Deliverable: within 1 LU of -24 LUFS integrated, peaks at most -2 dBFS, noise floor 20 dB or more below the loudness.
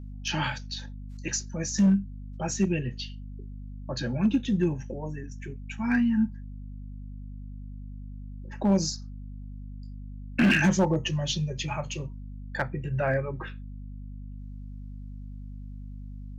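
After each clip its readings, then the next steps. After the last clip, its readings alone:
clipped 0.4%; flat tops at -16.0 dBFS; hum 50 Hz; harmonics up to 250 Hz; hum level -37 dBFS; loudness -28.0 LUFS; peak -16.0 dBFS; loudness target -24.0 LUFS
-> clip repair -16 dBFS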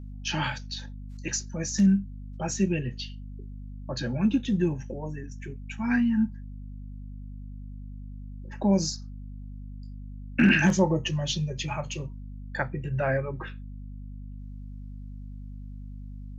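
clipped 0.0%; hum 50 Hz; harmonics up to 250 Hz; hum level -37 dBFS
-> notches 50/100/150/200/250 Hz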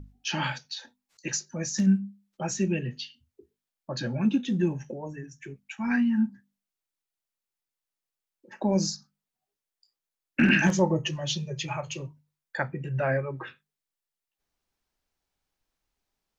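hum none; loudness -28.0 LUFS; peak -8.5 dBFS; loudness target -24.0 LUFS
-> gain +4 dB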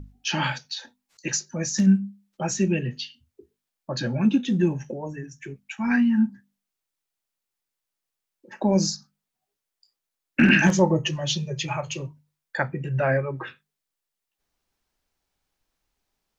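loudness -24.0 LUFS; peak -4.5 dBFS; noise floor -85 dBFS

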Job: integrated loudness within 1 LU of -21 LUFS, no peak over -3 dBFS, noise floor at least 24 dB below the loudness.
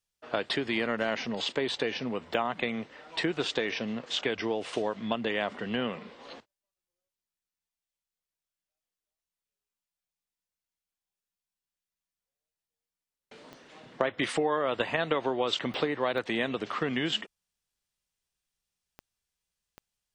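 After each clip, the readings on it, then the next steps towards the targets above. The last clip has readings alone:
clicks 6; loudness -31.0 LUFS; peak -11.0 dBFS; loudness target -21.0 LUFS
-> de-click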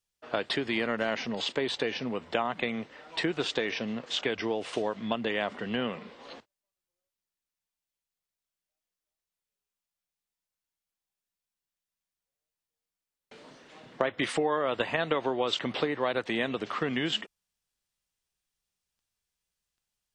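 clicks 0; loudness -31.0 LUFS; peak -11.0 dBFS; loudness target -21.0 LUFS
-> gain +10 dB; limiter -3 dBFS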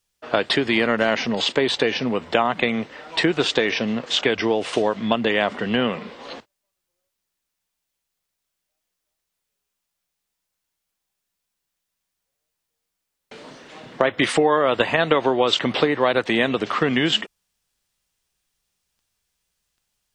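loudness -21.0 LUFS; peak -3.0 dBFS; noise floor -81 dBFS

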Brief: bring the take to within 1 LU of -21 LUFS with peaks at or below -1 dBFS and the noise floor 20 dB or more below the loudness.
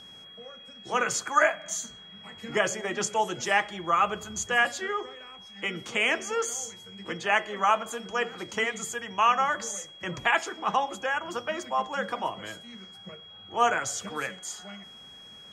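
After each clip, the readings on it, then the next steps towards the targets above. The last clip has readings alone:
steady tone 3300 Hz; tone level -46 dBFS; loudness -28.0 LUFS; peak -8.5 dBFS; loudness target -21.0 LUFS
-> notch 3300 Hz, Q 30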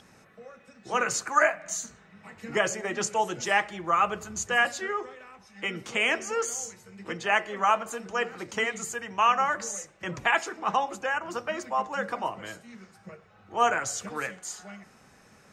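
steady tone none; loudness -28.0 LUFS; peak -8.5 dBFS; loudness target -21.0 LUFS
-> gain +7 dB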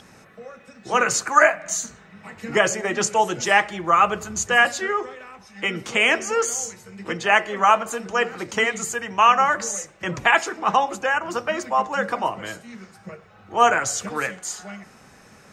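loudness -21.0 LUFS; peak -1.5 dBFS; noise floor -50 dBFS

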